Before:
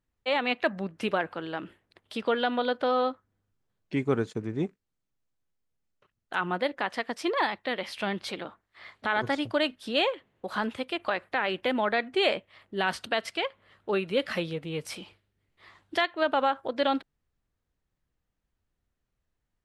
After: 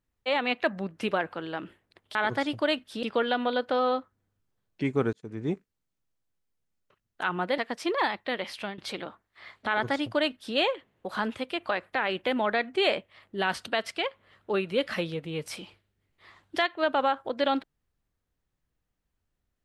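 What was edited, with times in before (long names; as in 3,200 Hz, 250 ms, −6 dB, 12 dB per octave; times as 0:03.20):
0:04.25–0:04.58: fade in linear
0:06.70–0:06.97: remove
0:07.84–0:08.17: fade out equal-power, to −17 dB
0:09.07–0:09.95: duplicate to 0:02.15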